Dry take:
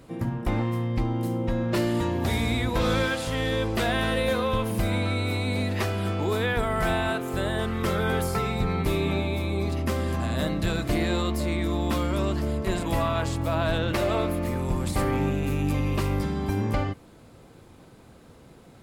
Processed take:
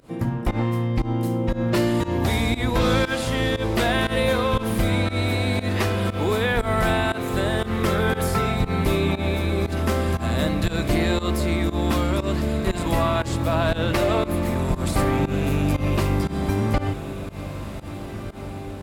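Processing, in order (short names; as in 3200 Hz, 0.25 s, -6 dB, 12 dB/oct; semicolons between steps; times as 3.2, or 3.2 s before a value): diffused feedback echo 1.651 s, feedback 55%, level -12 dB; pump 118 bpm, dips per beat 1, -19 dB, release 0.117 s; gain +4 dB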